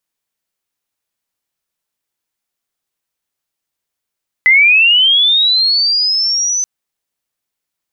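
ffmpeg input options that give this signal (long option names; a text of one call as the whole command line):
ffmpeg -f lavfi -i "aevalsrc='pow(10,(-4.5-8.5*t/2.18)/20)*sin(2*PI*(2000*t+4100*t*t/(2*2.18)))':duration=2.18:sample_rate=44100" out.wav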